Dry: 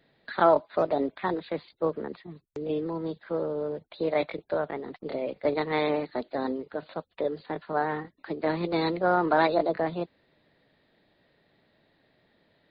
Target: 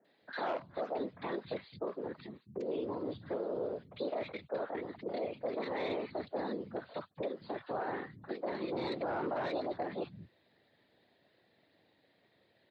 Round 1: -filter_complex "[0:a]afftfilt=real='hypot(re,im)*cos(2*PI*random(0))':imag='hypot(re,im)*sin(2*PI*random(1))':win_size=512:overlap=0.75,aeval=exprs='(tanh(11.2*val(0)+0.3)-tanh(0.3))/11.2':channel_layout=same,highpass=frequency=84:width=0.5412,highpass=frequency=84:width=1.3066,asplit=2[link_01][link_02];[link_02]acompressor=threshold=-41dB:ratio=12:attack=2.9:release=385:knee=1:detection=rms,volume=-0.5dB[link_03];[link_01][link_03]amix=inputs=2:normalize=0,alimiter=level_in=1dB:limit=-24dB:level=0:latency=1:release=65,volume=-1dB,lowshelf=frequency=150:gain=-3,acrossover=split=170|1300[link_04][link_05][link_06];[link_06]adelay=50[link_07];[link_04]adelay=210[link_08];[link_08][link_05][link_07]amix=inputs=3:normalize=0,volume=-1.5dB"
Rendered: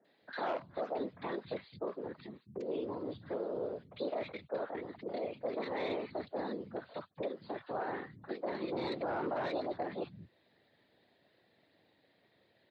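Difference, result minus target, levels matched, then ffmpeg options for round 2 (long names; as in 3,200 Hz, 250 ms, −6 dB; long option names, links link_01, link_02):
downward compressor: peak gain reduction +5.5 dB
-filter_complex "[0:a]afftfilt=real='hypot(re,im)*cos(2*PI*random(0))':imag='hypot(re,im)*sin(2*PI*random(1))':win_size=512:overlap=0.75,aeval=exprs='(tanh(11.2*val(0)+0.3)-tanh(0.3))/11.2':channel_layout=same,highpass=frequency=84:width=0.5412,highpass=frequency=84:width=1.3066,asplit=2[link_01][link_02];[link_02]acompressor=threshold=-35dB:ratio=12:attack=2.9:release=385:knee=1:detection=rms,volume=-0.5dB[link_03];[link_01][link_03]amix=inputs=2:normalize=0,alimiter=level_in=1dB:limit=-24dB:level=0:latency=1:release=65,volume=-1dB,lowshelf=frequency=150:gain=-3,acrossover=split=170|1300[link_04][link_05][link_06];[link_06]adelay=50[link_07];[link_04]adelay=210[link_08];[link_08][link_05][link_07]amix=inputs=3:normalize=0,volume=-1.5dB"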